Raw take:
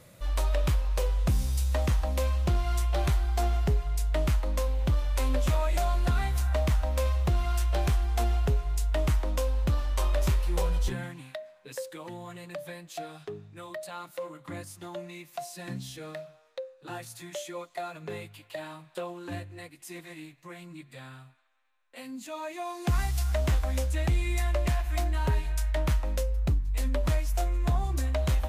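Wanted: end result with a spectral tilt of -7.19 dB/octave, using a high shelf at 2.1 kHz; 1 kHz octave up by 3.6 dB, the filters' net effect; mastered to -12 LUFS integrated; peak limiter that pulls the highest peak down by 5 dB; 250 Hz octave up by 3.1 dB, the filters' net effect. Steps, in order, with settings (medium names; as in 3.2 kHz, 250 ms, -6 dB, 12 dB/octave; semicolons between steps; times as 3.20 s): peaking EQ 250 Hz +4.5 dB; peaking EQ 1 kHz +6.5 dB; treble shelf 2.1 kHz -9 dB; trim +19 dB; peak limiter -1.5 dBFS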